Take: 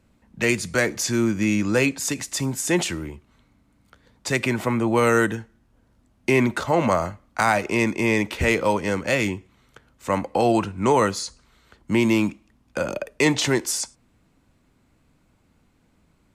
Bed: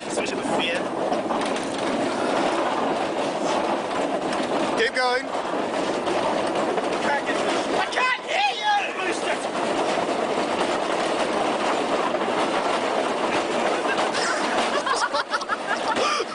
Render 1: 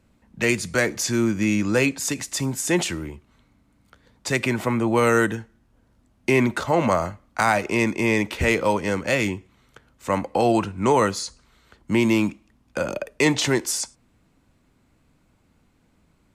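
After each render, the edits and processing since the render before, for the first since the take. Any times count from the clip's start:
no processing that can be heard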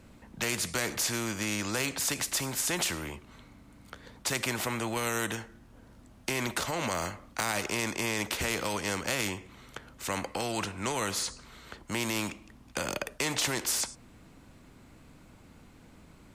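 brickwall limiter −13 dBFS, peak gain reduction 5 dB
every bin compressed towards the loudest bin 2 to 1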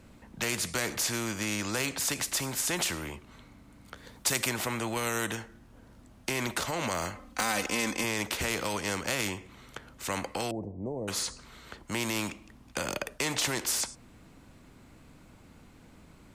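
0:03.97–0:04.49: high-shelf EQ 6,100 Hz +8 dB
0:07.15–0:08.04: comb filter 3.9 ms
0:10.51–0:11.08: inverse Chebyshev low-pass filter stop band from 1,300 Hz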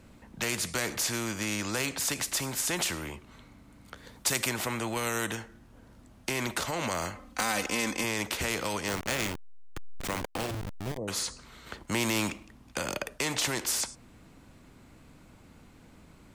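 0:08.88–0:10.98: hold until the input has moved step −28.5 dBFS
0:11.66–0:12.45: leveller curve on the samples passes 1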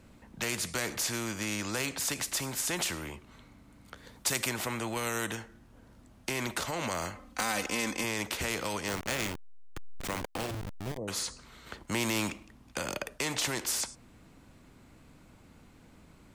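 level −2 dB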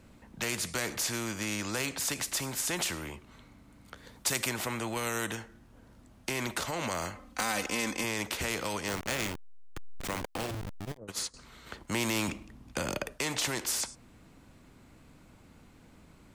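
0:10.85–0:11.34: noise gate −36 dBFS, range −16 dB
0:12.28–0:13.12: low-shelf EQ 390 Hz +6 dB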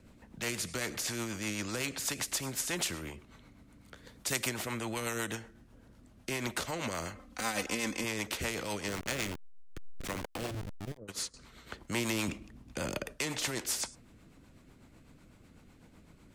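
rotating-speaker cabinet horn 8 Hz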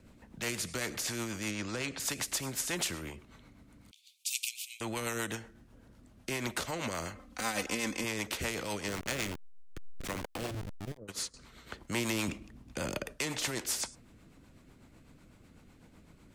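0:01.51–0:02.00: high-frequency loss of the air 61 metres
0:03.91–0:04.81: Butterworth high-pass 2,400 Hz 96 dB per octave

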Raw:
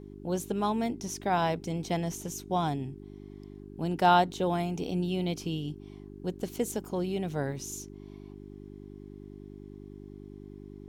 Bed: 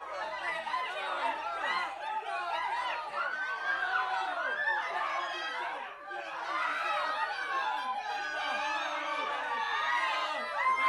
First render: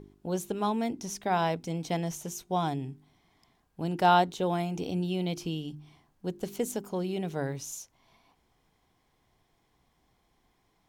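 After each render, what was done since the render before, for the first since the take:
hum removal 50 Hz, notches 8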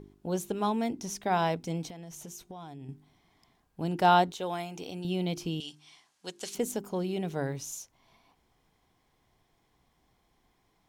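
0:01.89–0:02.89: downward compressor 16 to 1, threshold −40 dBFS
0:04.32–0:05.05: low-shelf EQ 410 Hz −12 dB
0:05.60–0:06.55: meter weighting curve ITU-R 468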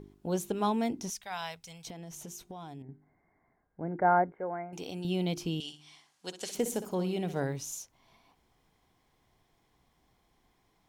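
0:01.10–0:01.87: guitar amp tone stack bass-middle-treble 10-0-10
0:02.82–0:04.73: Chebyshev low-pass with heavy ripple 2,200 Hz, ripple 6 dB
0:05.60–0:07.44: flutter between parallel walls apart 10.3 metres, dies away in 0.33 s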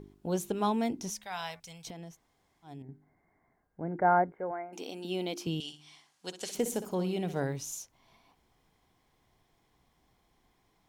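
0:00.96–0:01.60: hum removal 105.1 Hz, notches 22
0:02.12–0:02.67: fill with room tone, crossfade 0.10 s
0:04.51–0:05.47: linear-phase brick-wall high-pass 190 Hz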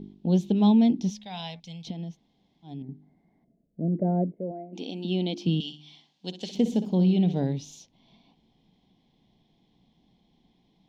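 0:03.44–0:04.75: gain on a spectral selection 700–8,000 Hz −19 dB
drawn EQ curve 100 Hz 0 dB, 200 Hz +15 dB, 400 Hz +2 dB, 860 Hz 0 dB, 1,300 Hz −15 dB, 3,500 Hz +8 dB, 6,200 Hz −6 dB, 9,200 Hz −21 dB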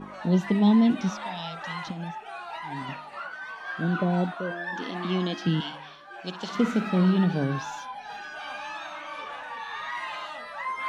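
mix in bed −3.5 dB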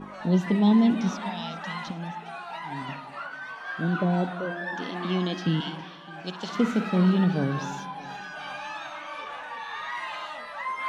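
delay that swaps between a low-pass and a high-pass 205 ms, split 820 Hz, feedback 61%, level −13.5 dB
spring reverb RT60 2.7 s, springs 55 ms, DRR 18 dB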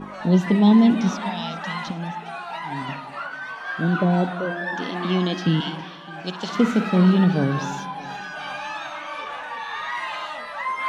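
level +5 dB

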